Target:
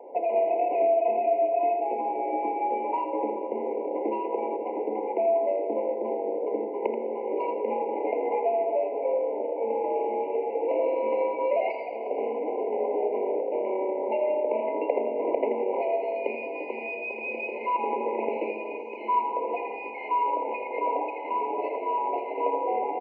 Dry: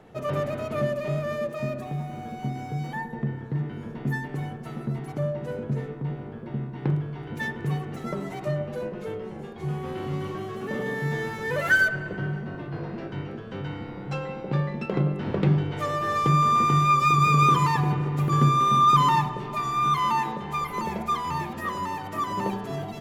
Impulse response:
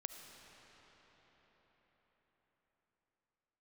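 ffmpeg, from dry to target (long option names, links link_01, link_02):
-filter_complex "[0:a]adynamicsmooth=sensitivity=1.5:basefreq=710,highpass=frequency=320:width_type=q:width=0.5412,highpass=frequency=320:width_type=q:width=1.307,lowpass=frequency=2500:width_type=q:width=0.5176,lowpass=frequency=2500:width_type=q:width=0.7071,lowpass=frequency=2500:width_type=q:width=1.932,afreqshift=81,asettb=1/sr,asplit=3[link_01][link_02][link_03];[link_01]atrim=end=1.194[link_04];[link_02]atrim=start=1.19:end=3.2,asetpts=PTS-STARTPTS,afade=type=in:duration=0.004:curve=qsin,afade=type=out:start_time=2.006:duration=0.004:curve=qsin,asplit=2[link_05][link_06];[link_06]adelay=16,volume=-3.5dB[link_07];[link_05][link_07]amix=inputs=2:normalize=0,atrim=end_sample=88641[link_08];[link_03]atrim=start=3.196[link_09];[link_04][link_08]acrossfade=duration=0.004:curve1=hsin:curve2=qsin[link_10];[link_10][link_09]acrossfade=duration=0.004:curve1=qsin:curve2=hsin,acompressor=threshold=-39dB:ratio=3,aecho=1:1:82:0.376,asplit=2[link_11][link_12];[1:a]atrim=start_sample=2205[link_13];[link_12][link_13]afir=irnorm=-1:irlink=0,volume=5.5dB[link_14];[link_11][link_14]amix=inputs=2:normalize=0,afftfilt=real='re*eq(mod(floor(b*sr/1024/1000),2),0)':imag='im*eq(mod(floor(b*sr/1024/1000),2),0)':win_size=1024:overlap=0.75,volume=7dB"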